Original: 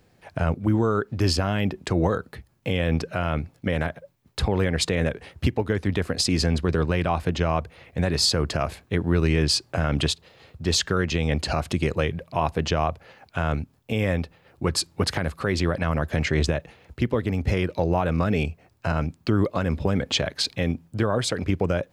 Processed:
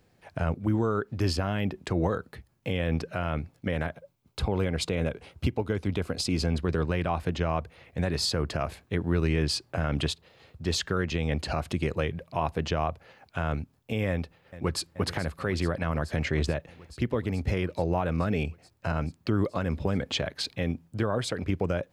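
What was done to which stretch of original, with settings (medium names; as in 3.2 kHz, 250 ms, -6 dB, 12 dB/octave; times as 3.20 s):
3.92–6.54 s: band-stop 1.8 kHz, Q 5.6
14.09–14.89 s: echo throw 430 ms, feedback 80%, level -15 dB
whole clip: dynamic bell 6.5 kHz, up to -4 dB, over -41 dBFS, Q 0.82; trim -4.5 dB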